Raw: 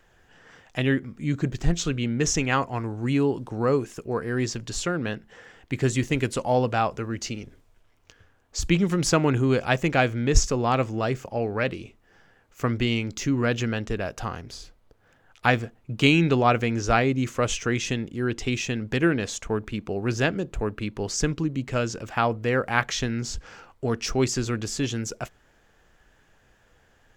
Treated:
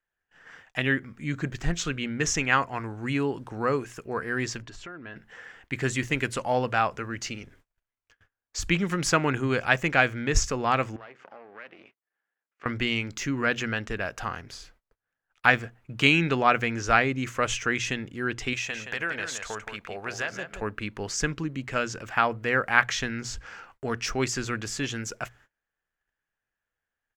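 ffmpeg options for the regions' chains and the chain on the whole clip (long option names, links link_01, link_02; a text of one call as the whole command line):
ffmpeg -i in.wav -filter_complex "[0:a]asettb=1/sr,asplit=3[link_01][link_02][link_03];[link_01]atrim=end=4.624[link_04];[link_02]atrim=start=4.62:end=5.16,asetpts=PTS-STARTPTS,afade=type=in:duration=0.004:curve=qsin,afade=type=out:start_time=0.536:duration=0.004:curve=qsin,lowpass=frequency=1800:poles=1,aecho=1:1:3:0.38,atrim=end_sample=23814,acompressor=threshold=-37dB:ratio=4:attack=3.2:release=140:knee=1:detection=peak[link_05];[link_03]atrim=start=5.156[link_06];[link_04][link_05]acrossfade=duration=0.004:curve1=hsin:curve2=qsin[link_07];[link_07][link_06]acrossfade=duration=0.004:curve1=qsin:curve2=hsin,asettb=1/sr,asplit=3[link_08][link_09][link_10];[link_08]atrim=end=10.964[link_11];[link_09]atrim=start=10.96:end=12.66,asetpts=PTS-STARTPTS,afade=type=in:duration=0.004:curve=qsin,afade=type=out:start_time=1.696:duration=0.004:curve=qsin,aeval=exprs='if(lt(val(0),0),0.251*val(0),val(0))':channel_layout=same,acompressor=threshold=-38dB:ratio=6:attack=3.2:release=140:knee=1:detection=peak,highpass=280,lowpass=3100[link_12];[link_10]atrim=start=12.656[link_13];[link_11][link_12]acrossfade=duration=0.004:curve1=hsin:curve2=qsin[link_14];[link_14][link_13]acrossfade=duration=0.004:curve1=qsin:curve2=hsin,asettb=1/sr,asplit=3[link_15][link_16][link_17];[link_15]atrim=end=18.534[link_18];[link_16]atrim=start=18.53:end=20.62,asetpts=PTS-STARTPTS,afade=type=in:duration=0.004:curve=qsin,afade=type=out:start_time=2.086:duration=0.004:curve=qsin,lowshelf=frequency=420:width_type=q:width=1.5:gain=-8.5,acompressor=threshold=-27dB:ratio=4:attack=3.2:release=140:knee=1:detection=peak,aecho=1:1:172:0.422,atrim=end_sample=92169[link_19];[link_17]atrim=start=20.616[link_20];[link_18][link_19]acrossfade=duration=0.004:curve1=hsin:curve2=qsin[link_21];[link_21][link_20]acrossfade=duration=0.004:curve1=qsin:curve2=hsin,bandreject=frequency=60:width_type=h:width=6,bandreject=frequency=120:width_type=h:width=6,agate=range=-27dB:threshold=-53dB:ratio=16:detection=peak,firequalizer=gain_entry='entry(380,0);entry(1600,10);entry(3700,3)':delay=0.05:min_phase=1,volume=-5dB" out.wav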